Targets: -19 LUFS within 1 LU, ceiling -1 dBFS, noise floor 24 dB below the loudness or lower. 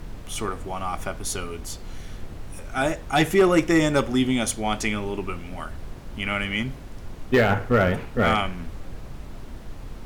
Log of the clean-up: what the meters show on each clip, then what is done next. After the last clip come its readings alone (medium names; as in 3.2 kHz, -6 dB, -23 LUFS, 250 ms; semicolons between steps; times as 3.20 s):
clipped samples 0.3%; clipping level -11.0 dBFS; noise floor -39 dBFS; noise floor target -48 dBFS; loudness -24.0 LUFS; peak level -11.0 dBFS; loudness target -19.0 LUFS
-> clip repair -11 dBFS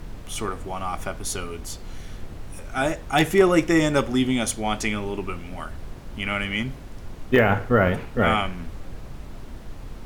clipped samples 0.0%; noise floor -39 dBFS; noise floor target -48 dBFS
-> noise print and reduce 9 dB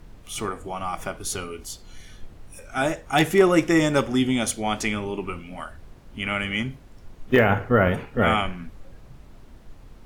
noise floor -48 dBFS; loudness -23.5 LUFS; peak level -3.0 dBFS; loudness target -19.0 LUFS
-> trim +4.5 dB; peak limiter -1 dBFS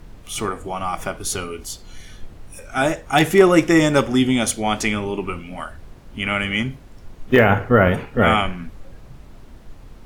loudness -19.0 LUFS; peak level -1.0 dBFS; noise floor -43 dBFS